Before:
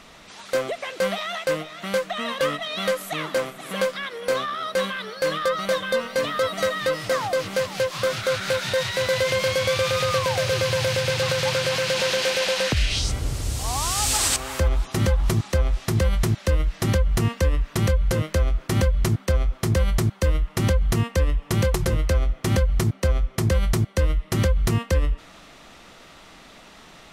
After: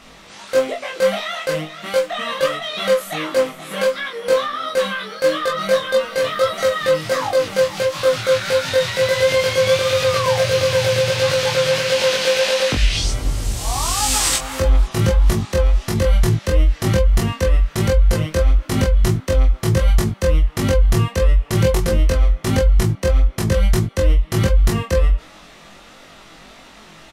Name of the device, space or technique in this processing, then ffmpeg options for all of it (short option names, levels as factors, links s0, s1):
double-tracked vocal: -filter_complex "[0:a]asplit=2[s0][s1];[s1]adelay=19,volume=0.708[s2];[s0][s2]amix=inputs=2:normalize=0,flanger=delay=22.5:depth=2.5:speed=1.5,volume=1.78"